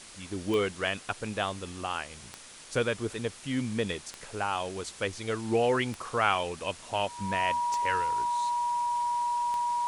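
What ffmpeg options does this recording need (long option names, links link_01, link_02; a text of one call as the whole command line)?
ffmpeg -i in.wav -af "adeclick=threshold=4,bandreject=frequency=960:width=30,afwtdn=0.005" out.wav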